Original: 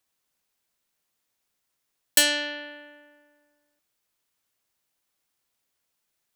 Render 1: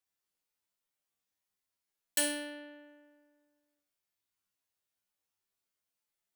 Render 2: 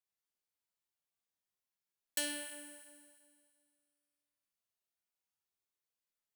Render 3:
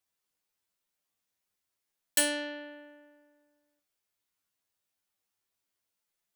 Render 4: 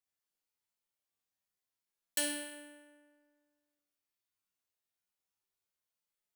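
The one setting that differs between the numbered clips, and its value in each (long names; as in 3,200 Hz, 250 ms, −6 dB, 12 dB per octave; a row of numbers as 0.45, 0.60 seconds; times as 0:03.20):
tuned comb filter, decay: 0.47, 2.2, 0.19, 1 seconds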